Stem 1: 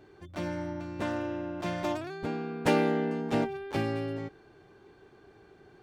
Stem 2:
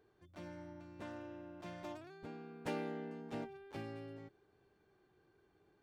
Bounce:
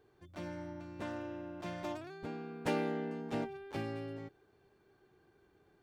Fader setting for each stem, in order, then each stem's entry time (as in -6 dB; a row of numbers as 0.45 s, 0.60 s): -17.5 dB, +2.5 dB; 0.00 s, 0.00 s